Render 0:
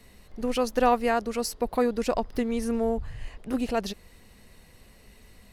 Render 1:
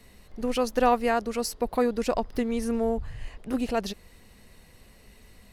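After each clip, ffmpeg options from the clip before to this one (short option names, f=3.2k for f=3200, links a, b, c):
-af anull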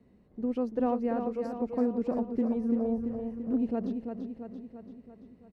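-filter_complex "[0:a]bandpass=f=240:t=q:w=1.2:csg=0,asplit=2[a][b];[b]aecho=0:1:338|676|1014|1352|1690|2028|2366|2704:0.473|0.274|0.159|0.0923|0.0535|0.0311|0.018|0.0104[c];[a][c]amix=inputs=2:normalize=0"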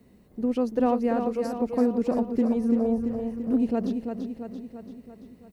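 -af "crystalizer=i=3:c=0,volume=5dB"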